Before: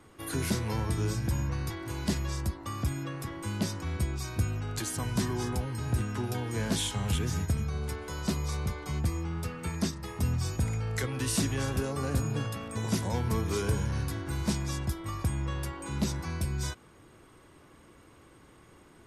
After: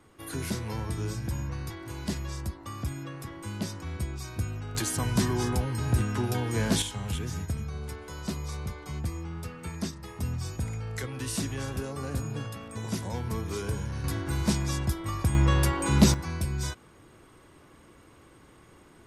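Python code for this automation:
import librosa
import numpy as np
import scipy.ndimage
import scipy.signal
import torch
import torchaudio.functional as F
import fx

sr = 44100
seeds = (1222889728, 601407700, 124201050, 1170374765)

y = fx.gain(x, sr, db=fx.steps((0.0, -2.5), (4.75, 4.0), (6.82, -3.0), (14.04, 3.5), (15.35, 11.0), (16.14, 1.5)))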